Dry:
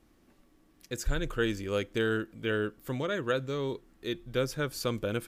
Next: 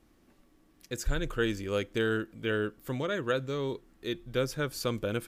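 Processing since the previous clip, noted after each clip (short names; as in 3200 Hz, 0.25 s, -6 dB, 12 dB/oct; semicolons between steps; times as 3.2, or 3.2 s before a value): nothing audible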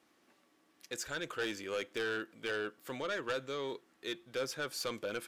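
weighting filter A; soft clip -29.5 dBFS, distortion -10 dB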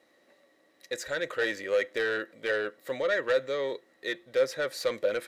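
dynamic EQ 1700 Hz, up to +5 dB, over -48 dBFS, Q 1.2; small resonant body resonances 550/1900/3900 Hz, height 15 dB, ringing for 25 ms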